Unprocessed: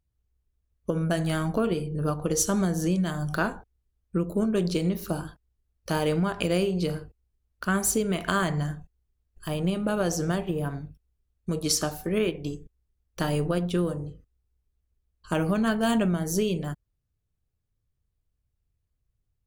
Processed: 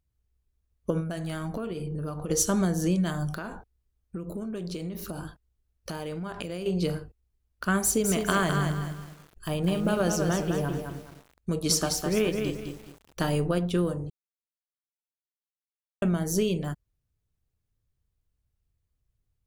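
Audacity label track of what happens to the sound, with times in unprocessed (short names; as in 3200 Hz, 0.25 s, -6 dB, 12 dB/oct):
1.000000	2.290000	compressor 12:1, threshold -29 dBFS
3.300000	6.660000	compressor 8:1, threshold -31 dBFS
7.830000	13.200000	lo-fi delay 0.208 s, feedback 35%, word length 8-bit, level -5 dB
14.100000	16.020000	mute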